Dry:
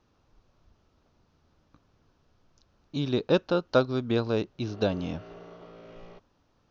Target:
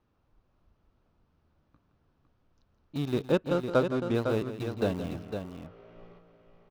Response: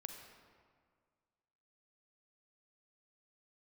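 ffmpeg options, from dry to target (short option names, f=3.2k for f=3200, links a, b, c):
-filter_complex "[0:a]bass=f=250:g=2,treble=f=4k:g=-11,asplit=2[a][b];[b]aeval=exprs='val(0)*gte(abs(val(0)),0.0501)':c=same,volume=-7dB[c];[a][c]amix=inputs=2:normalize=0,asettb=1/sr,asplit=3[d][e][f];[d]atrim=end=3.324[g];[e]atrim=start=3.32:end=4.15,asetpts=PTS-STARTPTS,afade=t=in:d=0.004:c=qsin,afade=t=out:st=0.826:d=0.004:c=qsin,adynamicsmooth=sensitivity=4:basefreq=3.9k[h];[f]atrim=start=4.146[i];[g][h]acrossfade=d=0.004:c1=hsin:c2=qsin[j];[j][i]acrossfade=d=0.004:c1=qsin:c2=hsin,aecho=1:1:167|506:0.266|0.447,volume=-6dB"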